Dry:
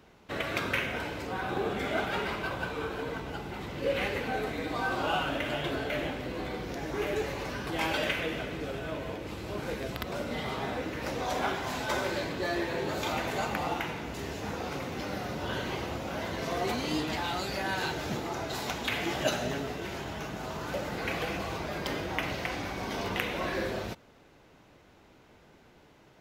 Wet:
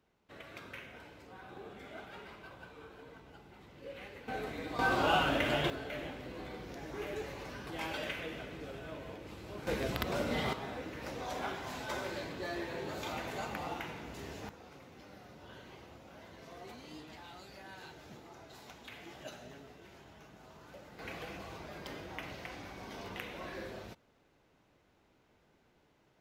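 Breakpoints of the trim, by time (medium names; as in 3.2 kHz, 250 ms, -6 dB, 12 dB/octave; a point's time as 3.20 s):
-17.5 dB
from 4.28 s -7 dB
from 4.79 s +1 dB
from 5.70 s -9 dB
from 9.67 s +0.5 dB
from 10.53 s -8 dB
from 14.49 s -18.5 dB
from 20.99 s -11.5 dB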